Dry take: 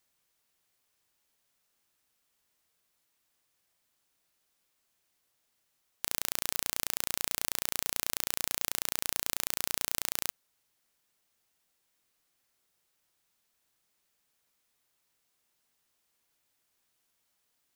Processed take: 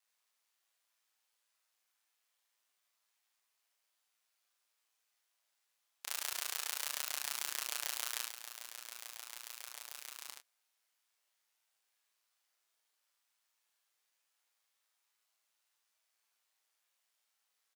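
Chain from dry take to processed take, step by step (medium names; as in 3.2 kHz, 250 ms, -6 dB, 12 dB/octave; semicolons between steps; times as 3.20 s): high-pass 710 Hz 12 dB/octave; treble shelf 11 kHz -5.5 dB; 8.24–10.28 s: compressor with a negative ratio -43 dBFS, ratio -0.5; flange 0.17 Hz, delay 3.7 ms, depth 5.7 ms, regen +21%; ring modulator 55 Hz; doubling 26 ms -7.5 dB; multi-tap echo 41/76/91 ms -6.5/-4/-18 dB; trim +1 dB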